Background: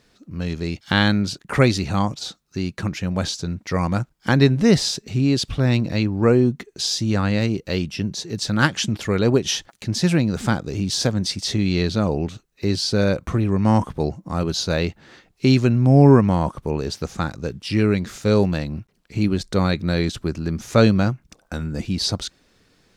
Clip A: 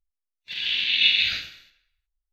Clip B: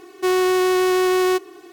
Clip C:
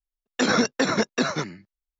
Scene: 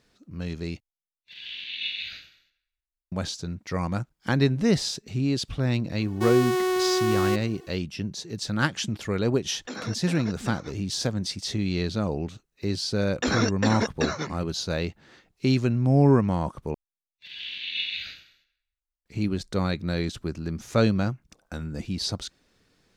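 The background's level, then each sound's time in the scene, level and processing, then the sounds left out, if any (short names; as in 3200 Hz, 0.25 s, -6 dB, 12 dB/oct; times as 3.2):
background -6.5 dB
0.8 replace with A -12.5 dB
5.98 add B -6.5 dB + notch 2700 Hz, Q 13
9.28 add C -17 dB + vocal rider within 5 dB 2 s
12.83 add C -4 dB
16.74 replace with A -11 dB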